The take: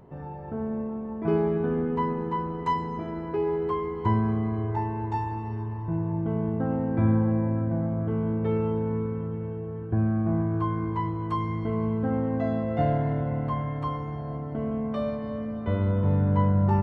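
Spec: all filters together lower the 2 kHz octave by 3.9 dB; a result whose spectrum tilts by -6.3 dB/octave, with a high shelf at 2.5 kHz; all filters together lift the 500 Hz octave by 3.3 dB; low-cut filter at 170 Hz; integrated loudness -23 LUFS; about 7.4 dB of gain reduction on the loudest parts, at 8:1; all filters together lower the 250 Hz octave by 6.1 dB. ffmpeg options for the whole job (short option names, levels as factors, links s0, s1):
-af "highpass=170,equalizer=f=250:t=o:g=-8.5,equalizer=f=500:t=o:g=7,equalizer=f=2000:t=o:g=-8,highshelf=f=2500:g=6.5,acompressor=threshold=0.0447:ratio=8,volume=2.99"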